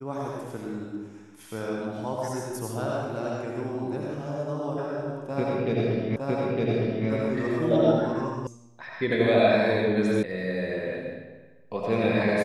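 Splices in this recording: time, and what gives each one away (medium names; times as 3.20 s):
6.16 s: repeat of the last 0.91 s
8.47 s: sound stops dead
10.23 s: sound stops dead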